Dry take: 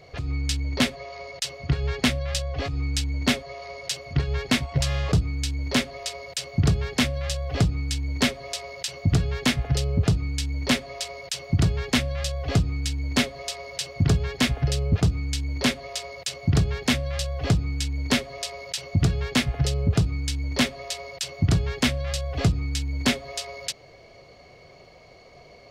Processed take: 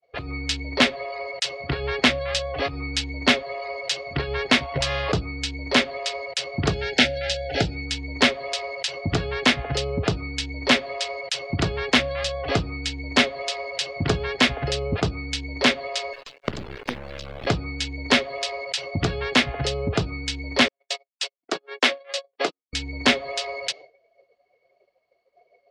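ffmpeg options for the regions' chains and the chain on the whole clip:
-filter_complex "[0:a]asettb=1/sr,asplit=3[a][b][c];[a]atrim=end=6.734[d];[b]atrim=start=6.73:end=7.86,asetpts=PTS-STARTPTS,afade=t=in:d=0.004:c=qsin,afade=t=out:st=1.126:d=0.004:c=qsin,aemphasis=mode=production:type=cd,acrossover=split=5700[e][f];[f]acompressor=threshold=-37dB:ratio=4:attack=1:release=60[g];[e][g]amix=inputs=2:normalize=0,asuperstop=centerf=1100:order=8:qfactor=2.8[h];[c]atrim=start=7.856[i];[d][h]acrossfade=d=0.004:c1=hsin:c2=qsin[j];[j][i]acrossfade=d=0.004:c1=qsin:c2=hsin,asettb=1/sr,asplit=3[k][l][m];[k]atrim=end=16.134[n];[l]atrim=start=16.13:end=17.47,asetpts=PTS-STARTPTS,afade=t=in:d=0.004:c=qsin,afade=t=out:st=1.336:d=0.004:c=qsin,equalizer=f=910:t=o:w=0.92:g=-5.5,acrossover=split=260|7000[o][p][q];[o]acompressor=threshold=-25dB:ratio=4[r];[p]acompressor=threshold=-40dB:ratio=4[s];[q]acompressor=threshold=-47dB:ratio=4[t];[r][s][t]amix=inputs=3:normalize=0,acrusher=bits=4:dc=4:mix=0:aa=0.000001[u];[m]atrim=start=17.466[v];[n][u]acrossfade=d=0.004:c1=hsin:c2=qsin[w];[w][v]acrossfade=d=0.004:c1=qsin:c2=hsin,asettb=1/sr,asplit=3[x][y][z];[x]atrim=end=20.684[aa];[y]atrim=start=20.68:end=22.73,asetpts=PTS-STARTPTS,afade=t=in:d=0.004:c=qsin,afade=t=out:st=2.046:d=0.004:c=qsin,highpass=f=310:w=0.5412,highpass=f=310:w=1.3066,agate=range=-54dB:threshold=-34dB:ratio=16:release=100:detection=peak[ab];[z]atrim=start=22.726[ac];[aa][ab]acrossfade=d=0.004:c1=hsin:c2=qsin[ad];[ad][ac]acrossfade=d=0.004:c1=qsin:c2=hsin,agate=range=-33dB:threshold=-40dB:ratio=3:detection=peak,acrossover=split=290 4800:gain=0.2 1 0.251[ae][af][ag];[ae][af][ag]amix=inputs=3:normalize=0,afftdn=nr=17:nf=-52,volume=7dB"

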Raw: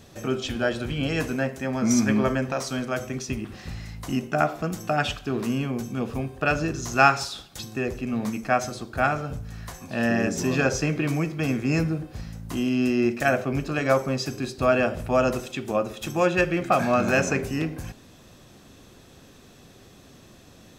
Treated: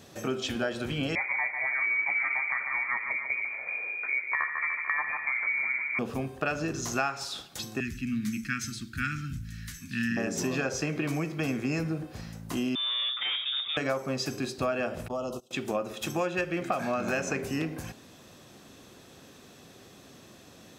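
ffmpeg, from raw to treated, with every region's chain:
-filter_complex "[0:a]asettb=1/sr,asplit=3[a][b][c];[a]atrim=end=1.154[d];[b]atrim=start=1.15:end=5.99,asetpts=PTS-STARTPTS,afade=t=in:d=0.004:c=qsin,afade=t=out:st=4.836:d=0.004:c=qsin,aecho=1:1:147|294|441|588|735|882:0.355|0.185|0.0959|0.0499|0.0259|0.0135,atrim=end_sample=213444,lowpass=f=2.1k:t=q:w=0.5098,lowpass=f=2.1k:t=q:w=0.6013,lowpass=f=2.1k:t=q:w=0.9,lowpass=f=2.1k:t=q:w=2.563,afreqshift=-2500[e];[c]atrim=start=5.986[f];[d][e]acrossfade=d=0.004:c1=hsin:c2=qsin[g];[g][f]acrossfade=d=0.004:c1=qsin:c2=hsin,asettb=1/sr,asplit=3[h][i][j];[h]atrim=end=7.804[k];[i]atrim=start=7.8:end=10.17,asetpts=PTS-STARTPTS,afade=t=in:d=0.004:c=qsin,afade=t=out:st=2.366:d=0.004:c=qsin,asuperstop=centerf=650:order=8:qfactor=0.52,lowshelf=f=62:g=10.5[l];[j]atrim=start=10.166[m];[k][l]acrossfade=d=0.004:c1=hsin:c2=qsin[n];[n][m]acrossfade=d=0.004:c1=qsin:c2=hsin,asettb=1/sr,asplit=3[o][p][q];[o]atrim=end=12.754[r];[p]atrim=start=12.75:end=13.77,asetpts=PTS-STARTPTS,afade=t=in:d=0.004:c=qsin,afade=t=out:st=1.016:d=0.004:c=qsin,highpass=f=58:w=0.5412,highpass=f=58:w=1.3066,aeval=exprs='(tanh(20*val(0)+0.1)-tanh(0.1))/20':c=same,lowpass=f=3.2k:t=q:w=0.5098,lowpass=f=3.2k:t=q:w=0.6013,lowpass=f=3.2k:t=q:w=0.9,lowpass=f=3.2k:t=q:w=2.563,afreqshift=-3800[s];[q]atrim=start=13.766[t];[r][s]acrossfade=d=0.004:c1=hsin:c2=qsin[u];[u][t]acrossfade=d=0.004:c1=qsin:c2=hsin,asettb=1/sr,asplit=3[v][w][x];[v]atrim=end=15.084[y];[w]atrim=start=15.08:end=15.51,asetpts=PTS-STARTPTS,afade=t=in:d=0.004:c=qsin,afade=t=out:st=0.426:d=0.004:c=qsin,agate=range=-24dB:threshold=-29dB:ratio=16:release=100:detection=peak,asuperstop=centerf=1900:order=12:qfactor=1.3,acompressor=threshold=-34dB:ratio=2.5:attack=3.2:release=140:knee=1:detection=peak[z];[x]atrim=start=15.506[aa];[y][z]acrossfade=d=0.004:c1=hsin:c2=qsin[ab];[ab][aa]acrossfade=d=0.004:c1=qsin:c2=hsin,highpass=f=170:p=1,acompressor=threshold=-26dB:ratio=6"

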